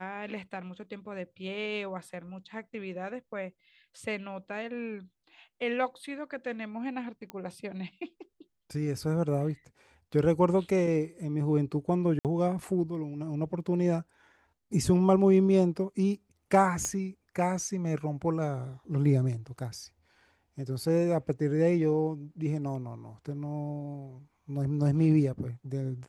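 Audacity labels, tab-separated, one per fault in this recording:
7.300000	7.300000	pop -24 dBFS
12.190000	12.250000	gap 58 ms
16.850000	16.850000	pop -19 dBFS

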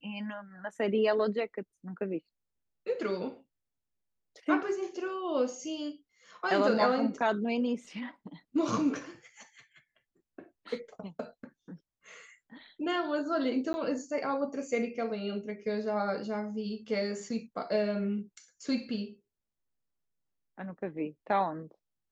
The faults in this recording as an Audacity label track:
13.730000	13.740000	gap 10 ms

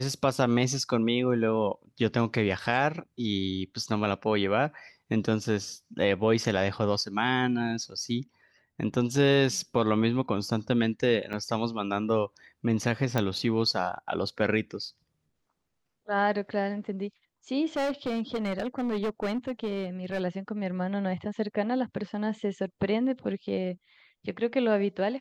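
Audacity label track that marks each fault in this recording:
11.330000	11.340000	gap 5.7 ms
13.180000	13.180000	pop -13 dBFS
17.760000	20.210000	clipped -25.5 dBFS

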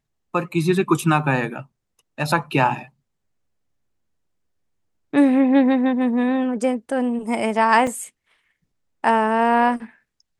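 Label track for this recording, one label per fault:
7.870000	7.870000	gap 3.4 ms

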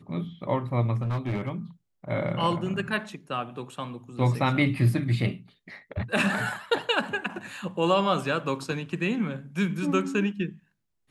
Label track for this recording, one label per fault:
1.010000	1.520000	clipped -24.5 dBFS

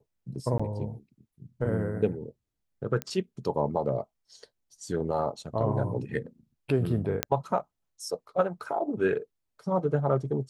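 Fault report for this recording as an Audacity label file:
0.580000	0.590000	gap 15 ms
3.020000	3.020000	pop -16 dBFS
7.230000	7.230000	pop -7 dBFS

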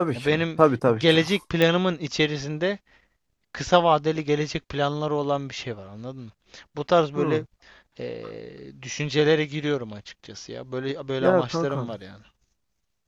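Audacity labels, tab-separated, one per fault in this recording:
1.620000	1.620000	pop -9 dBFS

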